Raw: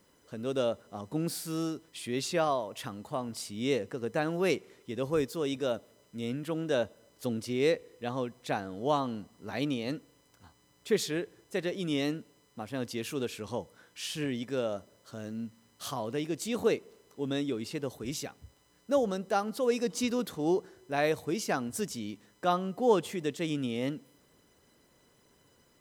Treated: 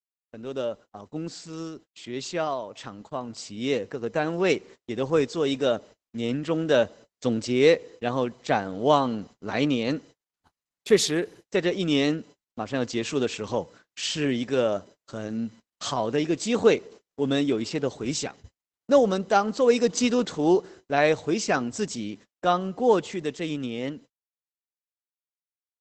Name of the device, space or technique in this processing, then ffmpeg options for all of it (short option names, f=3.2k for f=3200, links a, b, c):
video call: -af "highpass=f=120:p=1,dynaudnorm=f=970:g=9:m=9.5dB,agate=range=-44dB:threshold=-44dB:ratio=16:detection=peak" -ar 48000 -c:a libopus -b:a 12k